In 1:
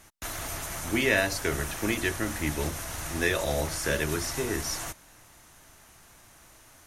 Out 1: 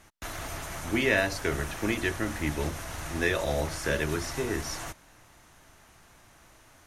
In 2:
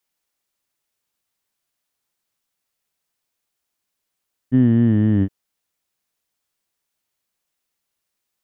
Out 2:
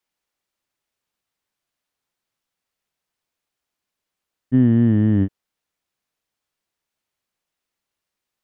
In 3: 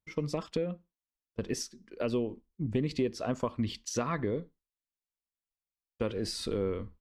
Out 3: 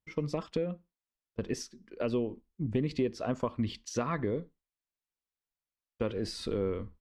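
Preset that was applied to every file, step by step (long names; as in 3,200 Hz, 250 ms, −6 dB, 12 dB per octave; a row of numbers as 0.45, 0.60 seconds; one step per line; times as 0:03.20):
high-shelf EQ 6,000 Hz −9 dB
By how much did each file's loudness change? −1.0, 0.0, 0.0 LU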